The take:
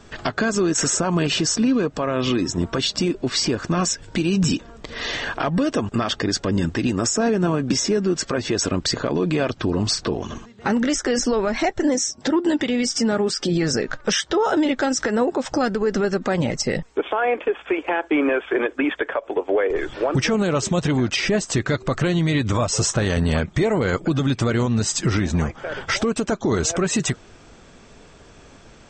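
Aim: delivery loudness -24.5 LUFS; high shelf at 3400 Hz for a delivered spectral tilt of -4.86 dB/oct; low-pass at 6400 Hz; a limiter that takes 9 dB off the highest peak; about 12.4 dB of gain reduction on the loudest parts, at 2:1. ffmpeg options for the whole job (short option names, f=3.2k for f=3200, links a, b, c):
-af "lowpass=6.4k,highshelf=f=3.4k:g=-5,acompressor=threshold=-40dB:ratio=2,volume=12dB,alimiter=limit=-15.5dB:level=0:latency=1"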